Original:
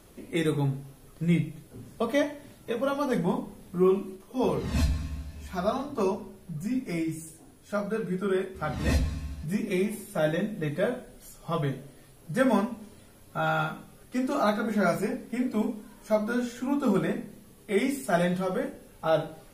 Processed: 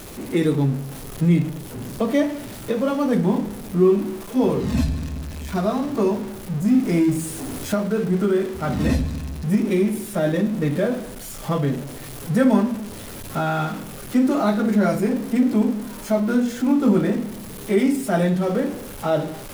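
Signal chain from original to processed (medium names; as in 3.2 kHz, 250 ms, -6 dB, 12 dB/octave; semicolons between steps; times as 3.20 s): jump at every zero crossing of -33.5 dBFS; recorder AGC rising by 5.1 dB/s; dynamic bell 250 Hz, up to +8 dB, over -38 dBFS, Q 0.72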